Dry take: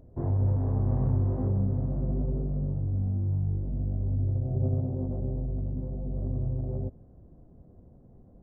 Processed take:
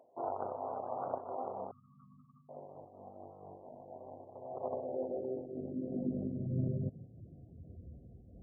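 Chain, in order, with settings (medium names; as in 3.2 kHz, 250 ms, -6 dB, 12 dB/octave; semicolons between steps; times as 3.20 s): Chebyshev shaper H 4 -12 dB, 6 -14 dB, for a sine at -15 dBFS; high-pass sweep 720 Hz -> 65 Hz, 4.51–7.99 s; spectral gate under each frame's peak -25 dB strong; 1.71–2.49 s: brick-wall FIR band-stop 240–1100 Hz; random flutter of the level, depth 65%; trim +1 dB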